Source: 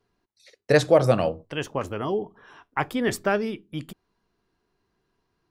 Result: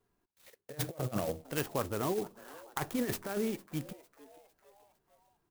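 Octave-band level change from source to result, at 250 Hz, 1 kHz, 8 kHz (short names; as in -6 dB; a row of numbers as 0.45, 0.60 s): -8.0, -11.5, -3.5 dB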